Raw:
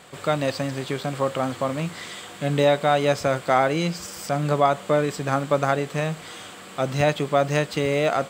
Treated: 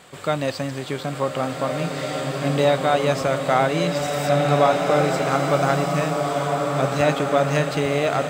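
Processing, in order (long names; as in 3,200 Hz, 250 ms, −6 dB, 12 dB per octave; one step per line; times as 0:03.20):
slow-attack reverb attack 1,820 ms, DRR 0.5 dB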